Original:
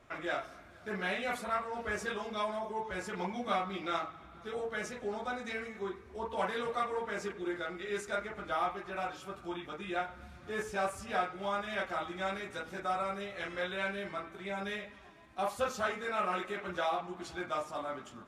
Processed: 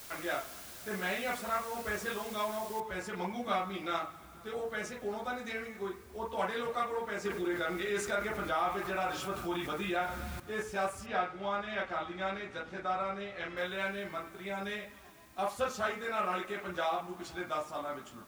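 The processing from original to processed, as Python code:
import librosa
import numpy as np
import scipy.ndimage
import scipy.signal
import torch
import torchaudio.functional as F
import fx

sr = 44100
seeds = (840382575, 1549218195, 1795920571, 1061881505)

y = fx.noise_floor_step(x, sr, seeds[0], at_s=2.8, before_db=-49, after_db=-64, tilt_db=0.0)
y = fx.env_flatten(y, sr, amount_pct=50, at=(7.25, 10.4))
y = fx.lowpass(y, sr, hz=4700.0, slope=12, at=(11.06, 13.57))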